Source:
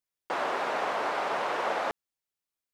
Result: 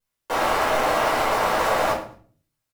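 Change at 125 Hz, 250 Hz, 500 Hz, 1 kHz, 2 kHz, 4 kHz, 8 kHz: +17.5, +10.5, +9.0, +8.5, +8.0, +10.0, +15.5 dB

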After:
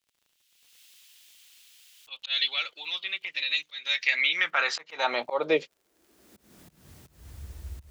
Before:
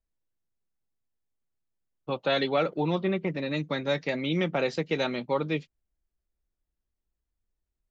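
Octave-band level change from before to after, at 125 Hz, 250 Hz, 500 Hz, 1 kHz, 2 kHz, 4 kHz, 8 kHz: under -10 dB, -12.5 dB, -4.5 dB, 0.0 dB, +7.5 dB, +8.0 dB, n/a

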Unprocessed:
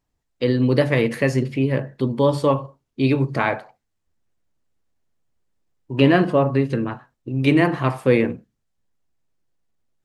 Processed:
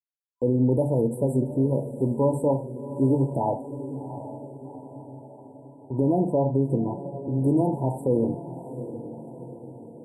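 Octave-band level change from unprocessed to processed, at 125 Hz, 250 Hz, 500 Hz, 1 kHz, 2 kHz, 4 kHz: -3.5 dB, -3.5 dB, -4.0 dB, -5.5 dB, under -40 dB, under -40 dB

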